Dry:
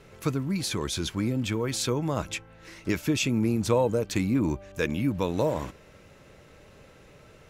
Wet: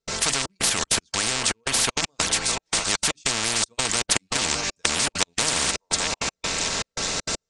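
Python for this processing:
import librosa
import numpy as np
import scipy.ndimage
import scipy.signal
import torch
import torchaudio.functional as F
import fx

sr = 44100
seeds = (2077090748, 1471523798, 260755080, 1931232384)

p1 = fx.rattle_buzz(x, sr, strikes_db=-27.0, level_db=-32.0)
p2 = scipy.signal.sosfilt(scipy.signal.ellip(4, 1.0, 40, 8900.0, 'lowpass', fs=sr, output='sos'), p1)
p3 = fx.high_shelf_res(p2, sr, hz=3500.0, db=10.0, q=1.5)
p4 = fx.hum_notches(p3, sr, base_hz=50, count=6)
p5 = p4 + 0.45 * np.pad(p4, (int(4.4 * sr / 1000.0), 0))[:len(p4)]
p6 = fx.level_steps(p5, sr, step_db=22)
p7 = p5 + F.gain(torch.from_numpy(p6), 2.0).numpy()
p8 = fx.echo_stepped(p7, sr, ms=607, hz=820.0, octaves=1.4, feedback_pct=70, wet_db=-8.5)
p9 = fx.rider(p8, sr, range_db=4, speed_s=2.0)
p10 = fx.step_gate(p9, sr, bpm=198, pattern='.xxxxx..xxx.x.', floor_db=-60.0, edge_ms=4.5)
p11 = fx.spectral_comp(p10, sr, ratio=10.0)
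y = F.gain(torch.from_numpy(p11), -1.0).numpy()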